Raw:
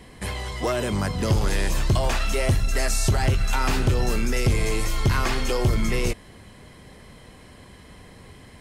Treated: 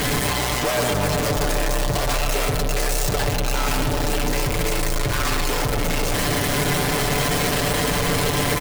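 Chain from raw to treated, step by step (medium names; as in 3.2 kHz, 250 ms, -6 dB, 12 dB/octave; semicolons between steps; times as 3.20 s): one-bit comparator; comb 6.9 ms; band-passed feedback delay 131 ms, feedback 84%, band-pass 580 Hz, level -4 dB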